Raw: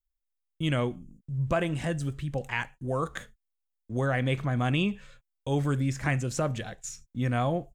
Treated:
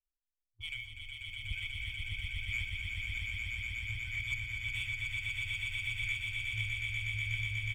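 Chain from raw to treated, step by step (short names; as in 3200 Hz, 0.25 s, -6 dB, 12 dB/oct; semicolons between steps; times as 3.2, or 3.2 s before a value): vocal tract filter i; FFT band-reject 110–1500 Hz; sample leveller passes 2; comb 0.9 ms, depth 89%; on a send: swelling echo 0.122 s, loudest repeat 8, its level -4 dB; on the sum: gain +1.5 dB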